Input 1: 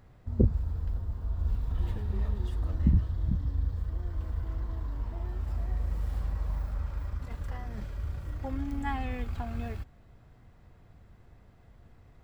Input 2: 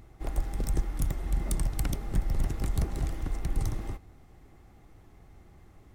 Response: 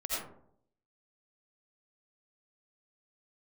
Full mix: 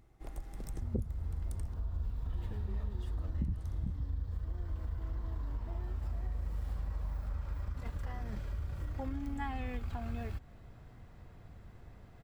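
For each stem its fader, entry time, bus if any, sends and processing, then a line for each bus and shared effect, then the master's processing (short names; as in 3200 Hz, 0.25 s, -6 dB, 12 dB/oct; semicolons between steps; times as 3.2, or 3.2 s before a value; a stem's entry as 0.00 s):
+2.5 dB, 0.55 s, no send, dry
-11.0 dB, 0.00 s, muted 1.74–3.4, no send, dry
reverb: off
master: compressor 3:1, threshold -36 dBFS, peak gain reduction 16 dB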